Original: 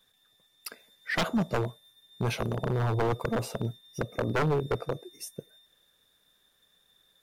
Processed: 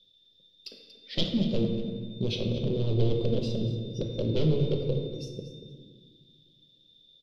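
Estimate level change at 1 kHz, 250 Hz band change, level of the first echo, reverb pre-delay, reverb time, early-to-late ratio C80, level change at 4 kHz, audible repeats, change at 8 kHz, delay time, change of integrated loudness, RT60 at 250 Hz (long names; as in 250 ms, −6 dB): −17.5 dB, +3.5 dB, −14.0 dB, 4 ms, 1.6 s, 5.5 dB, +5.0 dB, 1, can't be measured, 235 ms, +1.5 dB, 2.7 s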